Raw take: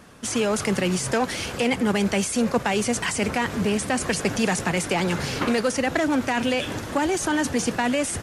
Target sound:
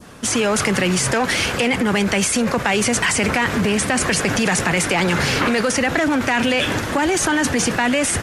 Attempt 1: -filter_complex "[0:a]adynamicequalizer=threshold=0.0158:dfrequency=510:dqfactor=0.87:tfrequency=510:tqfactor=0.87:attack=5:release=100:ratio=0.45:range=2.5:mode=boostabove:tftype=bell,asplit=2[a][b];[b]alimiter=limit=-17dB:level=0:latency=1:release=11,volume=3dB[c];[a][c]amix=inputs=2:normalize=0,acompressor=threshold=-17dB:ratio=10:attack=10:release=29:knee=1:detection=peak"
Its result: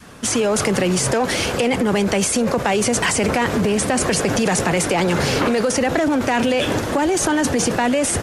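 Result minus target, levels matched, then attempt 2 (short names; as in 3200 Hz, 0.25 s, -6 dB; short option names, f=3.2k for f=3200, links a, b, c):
2000 Hz band -4.0 dB
-filter_complex "[0:a]adynamicequalizer=threshold=0.0158:dfrequency=1900:dqfactor=0.87:tfrequency=1900:tqfactor=0.87:attack=5:release=100:ratio=0.45:range=2.5:mode=boostabove:tftype=bell,asplit=2[a][b];[b]alimiter=limit=-17dB:level=0:latency=1:release=11,volume=3dB[c];[a][c]amix=inputs=2:normalize=0,acompressor=threshold=-17dB:ratio=10:attack=10:release=29:knee=1:detection=peak"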